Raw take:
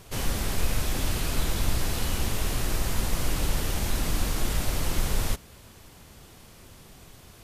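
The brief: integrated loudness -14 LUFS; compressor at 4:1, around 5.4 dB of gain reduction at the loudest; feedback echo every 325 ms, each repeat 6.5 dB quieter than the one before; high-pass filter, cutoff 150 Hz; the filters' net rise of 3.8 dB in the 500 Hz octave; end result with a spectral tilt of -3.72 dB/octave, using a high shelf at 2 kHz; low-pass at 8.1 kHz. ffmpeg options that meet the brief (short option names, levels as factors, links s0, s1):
-af "highpass=150,lowpass=8100,equalizer=f=500:t=o:g=4.5,highshelf=f=2000:g=4,acompressor=threshold=0.02:ratio=4,aecho=1:1:325|650|975|1300|1625|1950:0.473|0.222|0.105|0.0491|0.0231|0.0109,volume=10.6"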